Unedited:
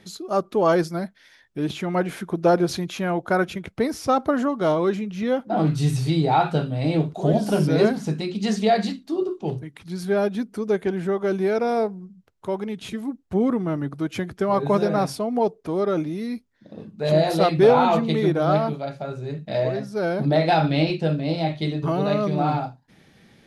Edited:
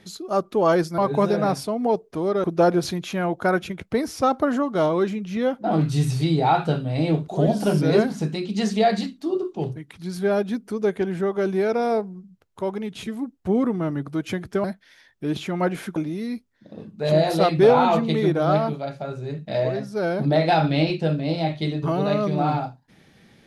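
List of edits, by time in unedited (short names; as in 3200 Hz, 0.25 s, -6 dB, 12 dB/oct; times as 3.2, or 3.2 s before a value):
0.98–2.3 swap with 14.5–15.96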